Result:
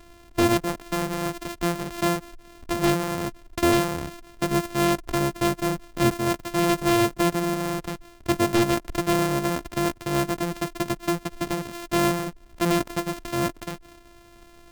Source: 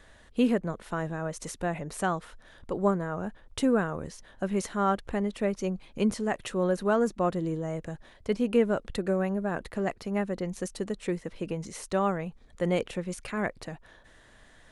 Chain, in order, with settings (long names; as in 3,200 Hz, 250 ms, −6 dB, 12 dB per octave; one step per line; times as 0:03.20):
samples sorted by size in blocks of 128 samples
dynamic equaliser 3,400 Hz, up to −4 dB, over −40 dBFS, Q 0.76
wave folding −19 dBFS
level +5.5 dB